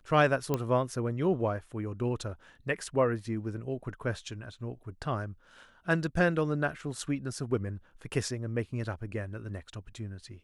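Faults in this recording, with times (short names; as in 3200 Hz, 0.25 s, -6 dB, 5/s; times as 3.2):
0.54 pop -15 dBFS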